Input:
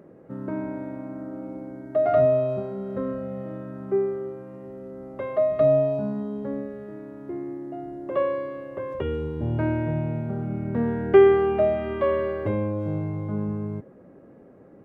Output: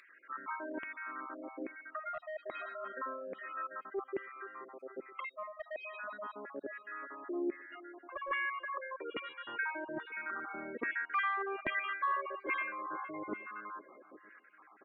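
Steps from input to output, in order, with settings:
time-frequency cells dropped at random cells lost 38%
auto-filter high-pass saw down 1.2 Hz 440–2,300 Hz
on a send: repeating echo 478 ms, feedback 45%, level −21.5 dB
on the sum: gate on every frequency bin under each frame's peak −25 dB strong
bass and treble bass −14 dB, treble 0 dB
soft clipping −10 dBFS, distortion −18 dB
reversed playback
downward compressor 12 to 1, threshold −35 dBFS, peak gain reduction 21 dB
reversed playback
flat-topped bell 630 Hz −15 dB 1.3 octaves
level +8 dB

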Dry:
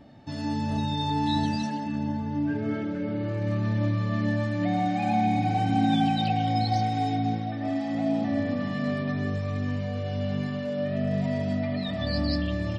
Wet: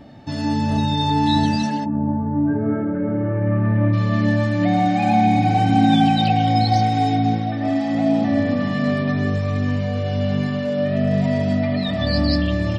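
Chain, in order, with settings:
0:01.84–0:03.92: low-pass filter 1,100 Hz → 2,200 Hz 24 dB per octave
level +8 dB

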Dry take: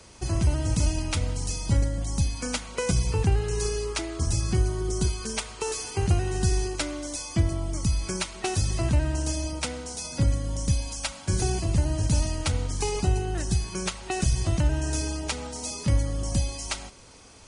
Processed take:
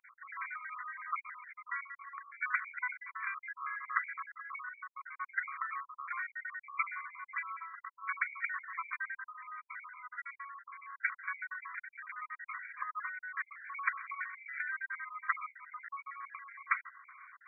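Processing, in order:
time-frequency cells dropped at random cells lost 51%
linear-phase brick-wall band-pass 1,000–2,400 Hz
level +8 dB

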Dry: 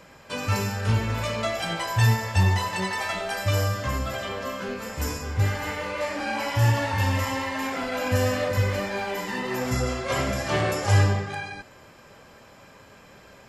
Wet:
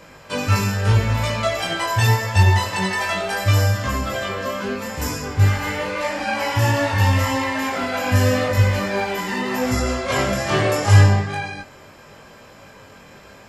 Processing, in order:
chorus effect 0.81 Hz, delay 19 ms, depth 2 ms
level +8.5 dB

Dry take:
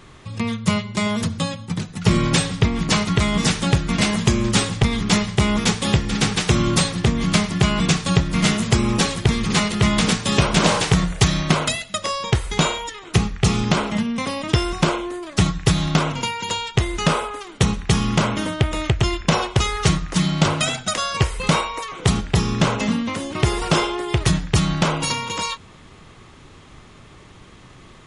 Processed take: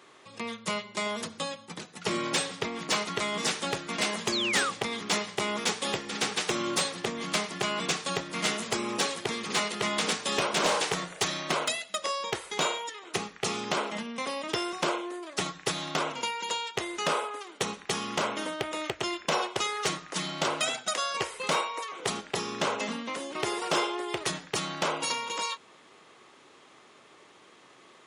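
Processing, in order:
Chebyshev high-pass filter 420 Hz, order 2
hard clipping −12.5 dBFS, distortion −22 dB
sound drawn into the spectrogram fall, 0:04.32–0:04.71, 1,100–4,700 Hz −24 dBFS
level −6 dB

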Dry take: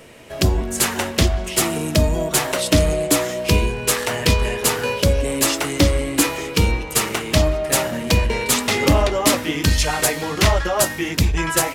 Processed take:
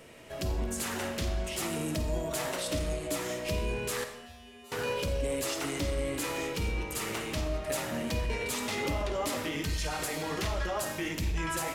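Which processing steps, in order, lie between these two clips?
brickwall limiter −16.5 dBFS, peak gain reduction 11 dB
0:04.04–0:04.72: tuned comb filter 80 Hz, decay 1 s, harmonics odd, mix 100%
on a send: convolution reverb RT60 0.85 s, pre-delay 10 ms, DRR 6.5 dB
on the sum: level −8.5 dB

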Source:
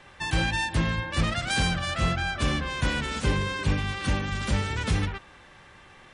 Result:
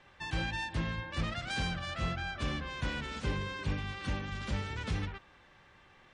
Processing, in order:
low-pass filter 6,100 Hz 12 dB per octave
level −9 dB

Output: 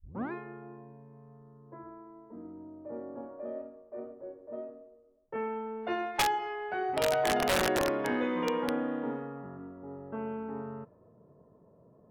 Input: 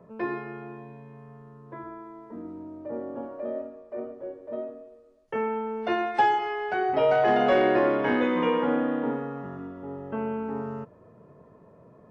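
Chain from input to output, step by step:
turntable start at the beginning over 0.32 s
wrap-around overflow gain 14 dB
low-pass that shuts in the quiet parts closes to 810 Hz, open at −20.5 dBFS
level −6.5 dB

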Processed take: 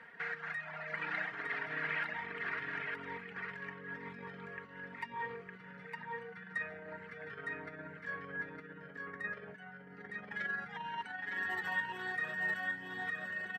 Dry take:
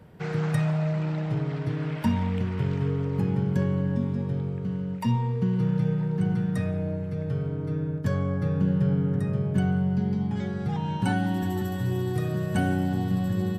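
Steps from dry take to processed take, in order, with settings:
reverb reduction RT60 1.1 s
comb filter 4.3 ms, depth 51%
in parallel at +3 dB: brickwall limiter −22.5 dBFS, peak gain reduction 11 dB
on the sum: compressor whose output falls as the input rises −27 dBFS, ratio −1
resonant band-pass 1,800 Hz, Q 4.4
on a send: single-tap delay 910 ms −3.5 dB
on the sum: level +3.5 dB

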